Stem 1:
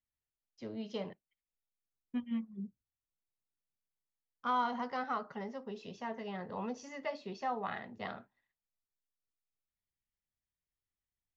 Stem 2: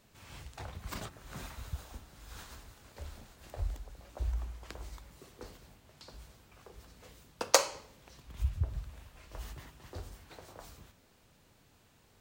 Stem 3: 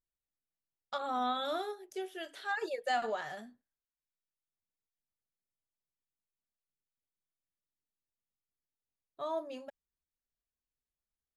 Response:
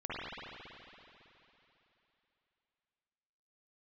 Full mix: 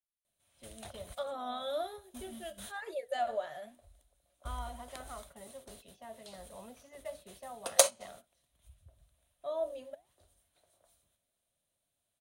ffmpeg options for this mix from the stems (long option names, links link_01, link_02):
-filter_complex "[0:a]highshelf=frequency=2400:gain=4.5,volume=-13.5dB,asplit=2[link_01][link_02];[1:a]highshelf=frequency=2500:gain=10,adelay=250,volume=-8dB[link_03];[2:a]flanger=delay=4.8:depth=8.7:regen=88:speed=1.1:shape=sinusoidal,adelay=250,volume=-3dB[link_04];[link_02]apad=whole_len=549250[link_05];[link_03][link_05]sidechaingate=range=-19dB:threshold=-59dB:ratio=16:detection=peak[link_06];[link_01][link_06][link_04]amix=inputs=3:normalize=0,superequalizer=8b=3.16:13b=1.58:14b=0.631:16b=3.55"